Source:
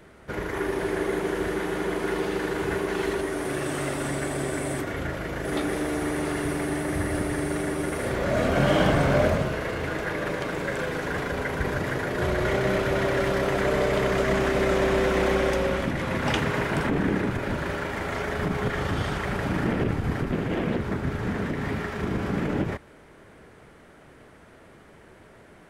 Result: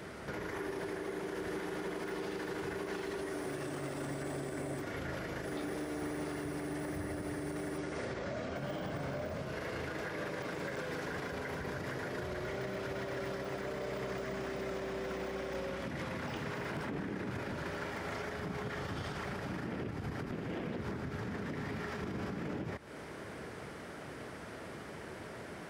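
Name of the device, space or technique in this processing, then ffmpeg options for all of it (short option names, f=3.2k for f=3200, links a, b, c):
broadcast voice chain: -filter_complex "[0:a]asettb=1/sr,asplit=3[a][b][c];[a]atrim=end=7.784[d];[b]atrim=start=7.78:end=8.56,asetpts=PTS-STARTPTS,afade=t=in:d=0.004:c=qsin,afade=t=out:st=0.776:d=0.004:c=qsin,lowpass=f=7.5k:w=0.5412,lowpass=f=7.5k:w=1.3066[e];[c]atrim=start=8.556[f];[d][e]acrossfade=d=0.004:c1=hsin:c2=qsin[g];[g][f]acrossfade=d=0.004:c1=qsin:c2=hsin,highpass=78,deesser=0.95,acompressor=threshold=-39dB:ratio=5,equalizer=f=5.1k:t=o:w=0.48:g=5.5,alimiter=level_in=11.5dB:limit=-24dB:level=0:latency=1:release=87,volume=-11.5dB,volume=5dB"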